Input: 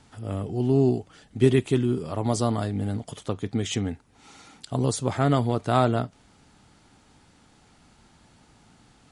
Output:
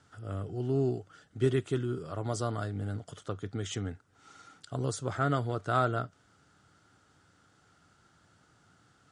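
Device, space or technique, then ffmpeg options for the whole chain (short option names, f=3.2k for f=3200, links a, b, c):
car door speaker: -af "highpass=88,equalizer=f=94:t=q:w=4:g=5,equalizer=f=230:t=q:w=4:g=-8,equalizer=f=890:t=q:w=4:g=-6,equalizer=f=1.4k:t=q:w=4:g=10,equalizer=f=2.4k:t=q:w=4:g=-6,equalizer=f=4.1k:t=q:w=4:g=-3,lowpass=f=9.1k:w=0.5412,lowpass=f=9.1k:w=1.3066,volume=-7dB"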